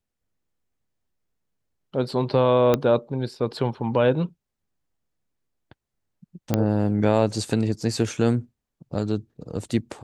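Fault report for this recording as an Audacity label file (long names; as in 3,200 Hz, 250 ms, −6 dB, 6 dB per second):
2.740000	2.740000	click −7 dBFS
6.540000	6.540000	click −7 dBFS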